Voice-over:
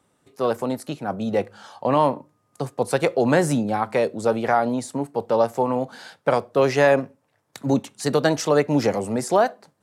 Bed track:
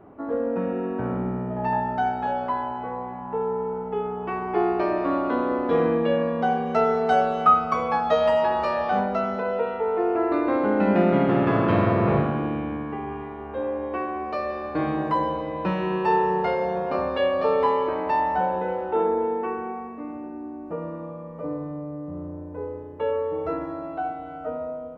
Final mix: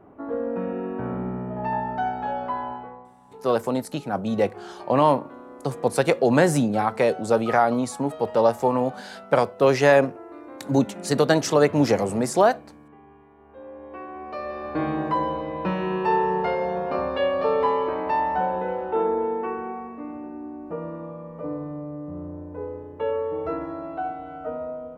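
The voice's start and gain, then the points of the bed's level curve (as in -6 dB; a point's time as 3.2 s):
3.05 s, +0.5 dB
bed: 2.73 s -2 dB
3.14 s -18.5 dB
13.26 s -18.5 dB
14.71 s -0.5 dB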